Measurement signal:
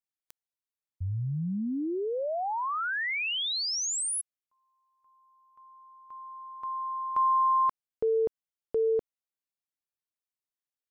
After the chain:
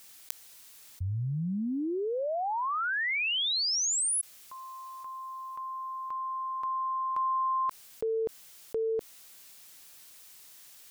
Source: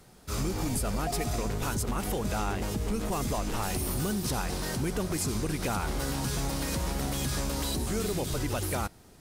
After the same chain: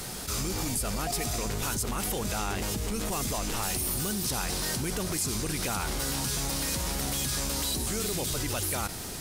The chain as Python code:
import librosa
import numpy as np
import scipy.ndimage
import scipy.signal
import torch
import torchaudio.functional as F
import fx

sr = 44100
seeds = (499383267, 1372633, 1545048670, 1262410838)

y = fx.high_shelf(x, sr, hz=2100.0, db=9.5)
y = fx.env_flatten(y, sr, amount_pct=70)
y = y * 10.0 ** (-7.0 / 20.0)